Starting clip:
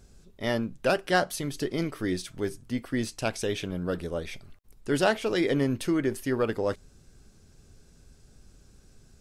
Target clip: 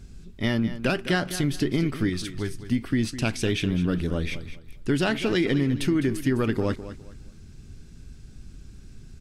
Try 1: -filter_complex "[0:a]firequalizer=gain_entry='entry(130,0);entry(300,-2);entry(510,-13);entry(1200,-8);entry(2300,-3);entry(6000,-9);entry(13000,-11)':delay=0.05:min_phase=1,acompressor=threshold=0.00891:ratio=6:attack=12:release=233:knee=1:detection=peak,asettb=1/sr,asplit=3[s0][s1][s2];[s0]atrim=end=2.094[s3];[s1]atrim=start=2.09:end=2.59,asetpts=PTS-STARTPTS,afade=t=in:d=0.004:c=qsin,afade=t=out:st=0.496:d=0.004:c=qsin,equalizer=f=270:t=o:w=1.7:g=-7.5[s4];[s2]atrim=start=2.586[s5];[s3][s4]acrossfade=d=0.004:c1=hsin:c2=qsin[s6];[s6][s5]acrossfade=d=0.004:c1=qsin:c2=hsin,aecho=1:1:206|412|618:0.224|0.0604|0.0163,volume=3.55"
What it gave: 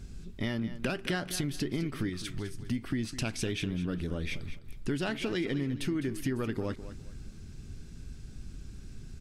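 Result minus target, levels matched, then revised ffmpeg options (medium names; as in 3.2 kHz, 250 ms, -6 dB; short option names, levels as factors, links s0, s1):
compression: peak gain reduction +9 dB
-filter_complex "[0:a]firequalizer=gain_entry='entry(130,0);entry(300,-2);entry(510,-13);entry(1200,-8);entry(2300,-3);entry(6000,-9);entry(13000,-11)':delay=0.05:min_phase=1,acompressor=threshold=0.0299:ratio=6:attack=12:release=233:knee=1:detection=peak,asettb=1/sr,asplit=3[s0][s1][s2];[s0]atrim=end=2.094[s3];[s1]atrim=start=2.09:end=2.59,asetpts=PTS-STARTPTS,afade=t=in:d=0.004:c=qsin,afade=t=out:st=0.496:d=0.004:c=qsin,equalizer=f=270:t=o:w=1.7:g=-7.5[s4];[s2]atrim=start=2.586[s5];[s3][s4]acrossfade=d=0.004:c1=hsin:c2=qsin[s6];[s6][s5]acrossfade=d=0.004:c1=qsin:c2=hsin,aecho=1:1:206|412|618:0.224|0.0604|0.0163,volume=3.55"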